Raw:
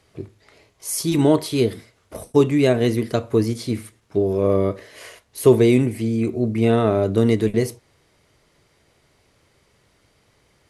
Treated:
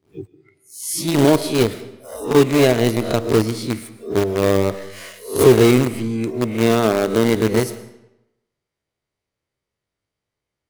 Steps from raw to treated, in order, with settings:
peak hold with a rise ahead of every peak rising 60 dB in 0.51 s
0:05.91–0:07.35: high-pass filter 66 Hz → 190 Hz 12 dB per octave
in parallel at −11 dB: log-companded quantiser 2 bits
on the sum: noise reduction from a noise print of the clip's start 22 dB
comb and all-pass reverb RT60 0.89 s, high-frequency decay 0.85×, pre-delay 75 ms, DRR 15 dB
level −2.5 dB

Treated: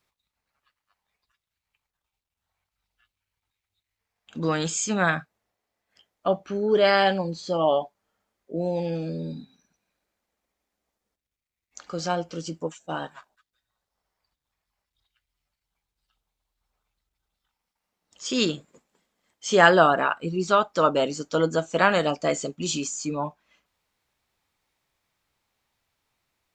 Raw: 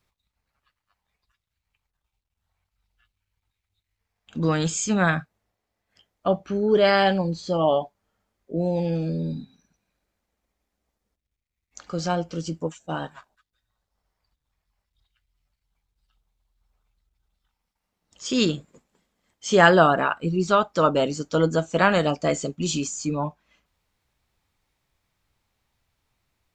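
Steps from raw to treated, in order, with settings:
low-shelf EQ 160 Hz −11.5 dB

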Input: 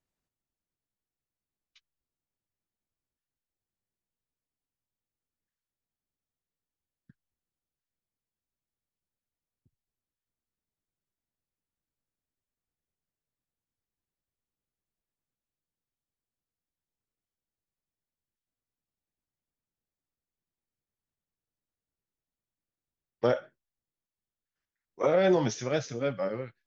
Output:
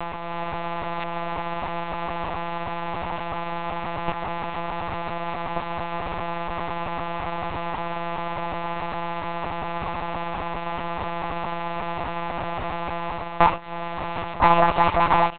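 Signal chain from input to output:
compressor on every frequency bin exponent 0.2
reverb reduction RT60 0.75 s
dynamic equaliser 720 Hz, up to +7 dB, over −40 dBFS, Q 1.4
comb filter 5.9 ms, depth 68%
automatic gain control gain up to 5.5 dB
wrong playback speed 45 rpm record played at 78 rpm
one-pitch LPC vocoder at 8 kHz 170 Hz
level −2 dB

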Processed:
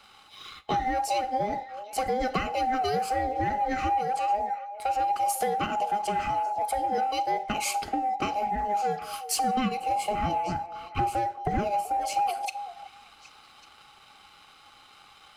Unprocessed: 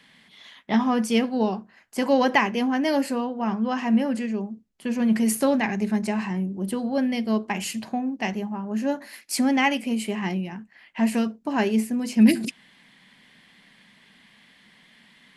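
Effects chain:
frequency inversion band by band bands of 1,000 Hz
0:09.44–0:11.97: low-shelf EQ 460 Hz +11.5 dB
downward compressor 6 to 1, threshold −28 dBFS, peak gain reduction 16.5 dB
leveller curve on the samples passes 1
echo through a band-pass that steps 383 ms, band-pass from 670 Hz, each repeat 1.4 octaves, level −11 dB
four-comb reverb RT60 0.46 s, combs from 30 ms, DRR 18 dB

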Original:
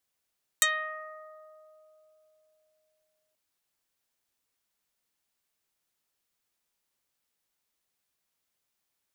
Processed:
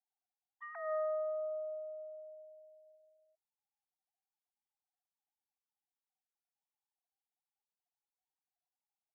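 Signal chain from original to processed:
three sine waves on the formant tracks
transistor ladder low-pass 900 Hz, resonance 35%
level +8 dB

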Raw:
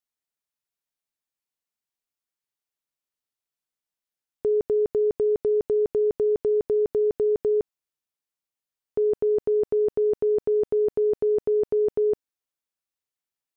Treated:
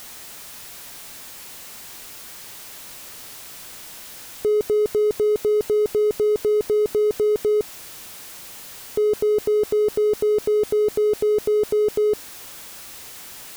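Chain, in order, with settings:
converter with a step at zero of −33 dBFS
level +2 dB

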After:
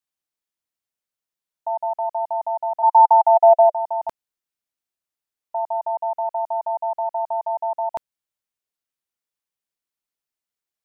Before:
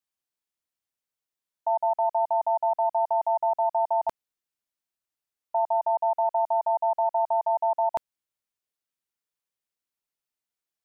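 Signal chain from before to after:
0:02.82–0:03.72: high-pass with resonance 990 Hz → 600 Hz, resonance Q 6.8

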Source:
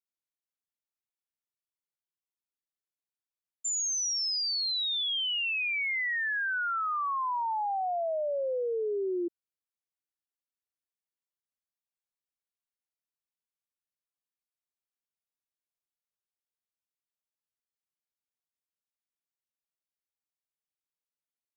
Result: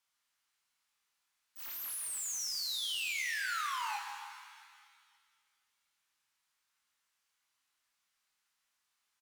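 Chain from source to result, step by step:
each half-wave held at its own peak
on a send: repeating echo 60 ms, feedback 31%, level −4.5 dB
on the sum: downward expander −15 dBFS
high-frequency loss of the air 160 metres
wrong playback speed 33 rpm record played at 78 rpm
low shelf with overshoot 740 Hz −12 dB, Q 1.5
mains-hum notches 60/120/180/240/300/360/420/480 Hz
power curve on the samples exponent 0.5
reverb with rising layers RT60 1.9 s, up +7 semitones, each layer −8 dB, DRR 3.5 dB

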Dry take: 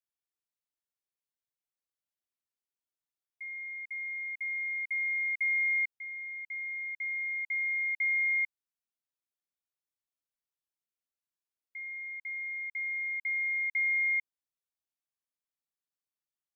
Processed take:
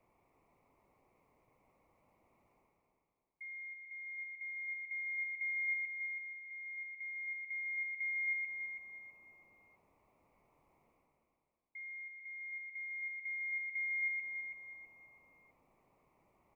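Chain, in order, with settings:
drawn EQ curve 1,100 Hz 0 dB, 1,600 Hz −27 dB, 2,200 Hz −5 dB, 3,200 Hz −30 dB
reversed playback
upward compression, threshold −49 dBFS
reversed playback
repeating echo 327 ms, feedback 36%, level −7 dB
level +1 dB

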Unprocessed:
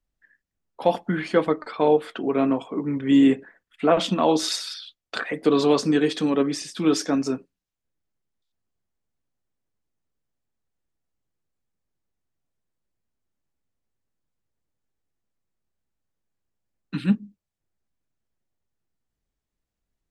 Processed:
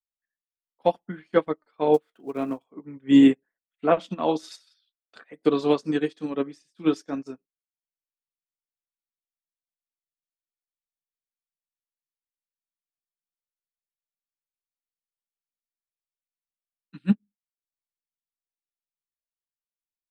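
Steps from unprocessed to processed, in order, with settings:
0:01.94–0:02.65: gap after every zero crossing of 0.052 ms
expander for the loud parts 2.5 to 1, over −36 dBFS
level +2.5 dB

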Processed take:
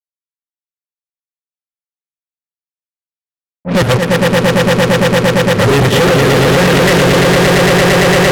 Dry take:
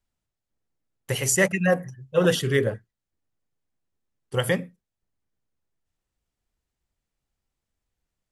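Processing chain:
played backwards from end to start
high-frequency loss of the air 280 metres
on a send: echo that builds up and dies away 114 ms, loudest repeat 8, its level −4 dB
on the sum: fuzz pedal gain 38 dB, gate −41 dBFS
in parallel at −0.5 dB: output level in coarse steps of 15 dB
on the sum: low-pass that shuts in the quiet parts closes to 470 Hz, open at −11.5 dBFS

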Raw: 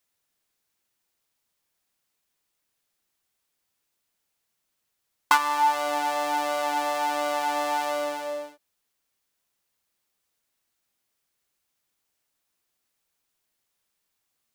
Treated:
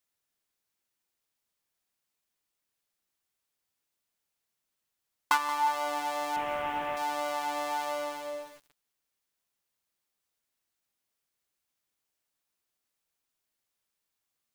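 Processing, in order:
0:06.36–0:06.97: linear delta modulator 16 kbit/s, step −26.5 dBFS
feedback echo at a low word length 178 ms, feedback 55%, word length 6 bits, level −13.5 dB
level −6 dB

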